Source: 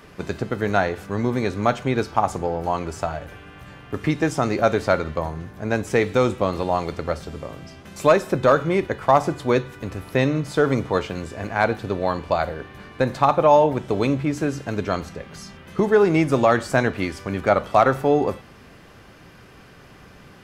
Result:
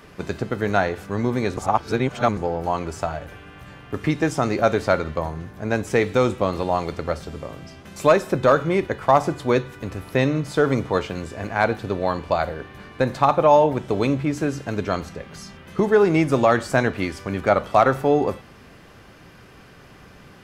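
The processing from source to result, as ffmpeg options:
-filter_complex "[0:a]asplit=3[a][b][c];[a]atrim=end=1.572[d];[b]atrim=start=1.568:end=2.372,asetpts=PTS-STARTPTS,areverse[e];[c]atrim=start=2.368[f];[d][e]acrossfade=d=0.004:c1=hsin:c2=hsin[g];[g][f]acrossfade=d=0.004:c1=hsin:c2=hsin"

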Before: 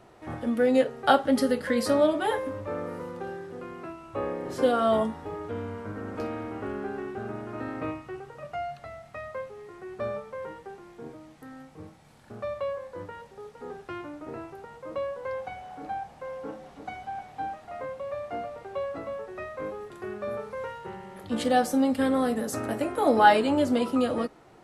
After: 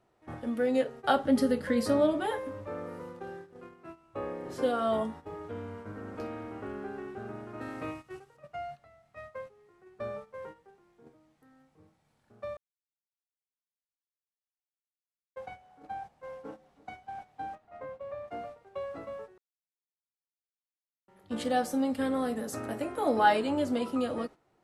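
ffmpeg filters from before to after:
-filter_complex "[0:a]asettb=1/sr,asplit=3[a][b][c];[a]atrim=end=1.164[d];[b]atrim=start=1.16:end=2.26,asetpts=PTS-STARTPTS,afade=t=in:d=0.004:c=qsin,afade=t=out:st=1.096:d=0.004:c=qsin,lowshelf=f=330:g=7.5[e];[c]atrim=start=2.256[f];[d][e]acrossfade=d=0.004:c1=hsin:c2=qsin[g];[g][f]acrossfade=d=0.004:c1=qsin:c2=hsin,asettb=1/sr,asplit=3[h][i][j];[h]atrim=end=7.614[k];[i]atrim=start=7.61:end=8.37,asetpts=PTS-STARTPTS,afade=t=in:d=0.004:c=qsin,afade=t=out:st=0.756:d=0.004:c=qsin,highshelf=f=3.4k:g=11[l];[j]atrim=start=8.366[m];[k][l]acrossfade=d=0.004:c1=hsin:c2=qsin[n];[n][m]acrossfade=d=0.004:c1=qsin:c2=hsin,asettb=1/sr,asplit=3[o][p][q];[o]atrim=end=17.554[r];[p]atrim=start=17.55:end=18.28,asetpts=PTS-STARTPTS,afade=t=in:d=0.004:c=qsin,afade=t=out:st=0.726:d=0.004:c=qsin,highshelf=f=3.8k:g=-11.5[s];[q]atrim=start=18.276[t];[r][s]acrossfade=d=0.004:c1=hsin:c2=qsin[u];[u][t]acrossfade=d=0.004:c1=qsin:c2=hsin,asplit=5[v][w][x][y][z];[v]atrim=end=12.57,asetpts=PTS-STARTPTS,afade=t=out:st=12.566:d=0.004:c=hsin[aa];[w]atrim=start=12.57:end=15.36,asetpts=PTS-STARTPTS,volume=0[ab];[x]atrim=start=15.36:end=19.38,asetpts=PTS-STARTPTS,afade=t=in:d=0.004:c=hsin,afade=t=out:st=4.016:d=0.004:c=hsin[ac];[y]atrim=start=19.38:end=21.08,asetpts=PTS-STARTPTS,volume=0[ad];[z]atrim=start=21.08,asetpts=PTS-STARTPTS,afade=t=in:d=0.004:c=hsin[ae];[aa][ab][ac][ad][ae]concat=n=5:v=0:a=1,agate=range=-11dB:threshold=-38dB:ratio=16:detection=peak,volume=-5.5dB"

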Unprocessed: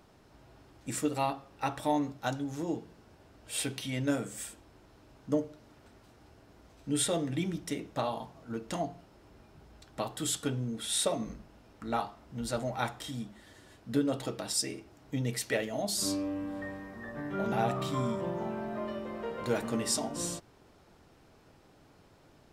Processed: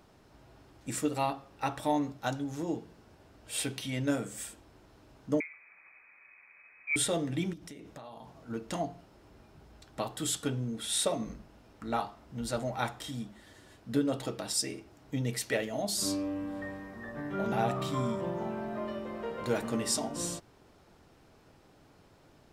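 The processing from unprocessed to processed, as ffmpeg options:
-filter_complex "[0:a]asettb=1/sr,asplit=3[a][b][c];[a]atrim=end=5.404[d];[b]atrim=start=5.4:end=6.96,asetpts=PTS-STARTPTS,afade=t=in:d=0.004:c=qsin,afade=t=out:st=1.556:d=0.004:c=qsin,lowpass=f=2.2k:t=q:w=0.5098,lowpass=f=2.2k:t=q:w=0.6013,lowpass=f=2.2k:t=q:w=0.9,lowpass=f=2.2k:t=q:w=2.563,afreqshift=-2600[e];[c]atrim=start=6.956[f];[d][e]acrossfade=d=0.004:c1=hsin:c2=qsin[g];[g][f]acrossfade=d=0.004:c1=qsin:c2=hsin,asettb=1/sr,asplit=3[h][i][j];[h]atrim=end=7.534[k];[i]atrim=start=7.53:end=8.33,asetpts=PTS-STARTPTS,afade=t=in:d=0.004:c=qsin,afade=t=out:st=0.796:d=0.004:c=qsin,acompressor=threshold=-43dB:ratio=8:attack=3.2:release=140:knee=1:detection=peak[l];[j]atrim=start=8.326[m];[k][l]acrossfade=d=0.004:c1=hsin:c2=qsin[n];[n][m]acrossfade=d=0.004:c1=qsin:c2=hsin"

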